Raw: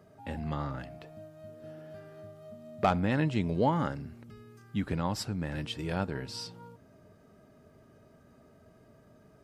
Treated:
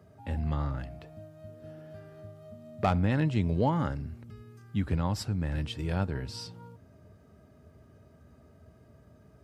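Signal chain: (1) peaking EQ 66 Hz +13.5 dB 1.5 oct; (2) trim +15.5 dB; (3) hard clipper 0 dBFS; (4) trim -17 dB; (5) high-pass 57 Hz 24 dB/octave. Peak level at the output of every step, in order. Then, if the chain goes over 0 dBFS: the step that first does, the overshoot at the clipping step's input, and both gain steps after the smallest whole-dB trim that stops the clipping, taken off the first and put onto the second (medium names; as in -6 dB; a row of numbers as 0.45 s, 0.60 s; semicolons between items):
-12.5 dBFS, +3.0 dBFS, 0.0 dBFS, -17.0 dBFS, -13.5 dBFS; step 2, 3.0 dB; step 2 +12.5 dB, step 4 -14 dB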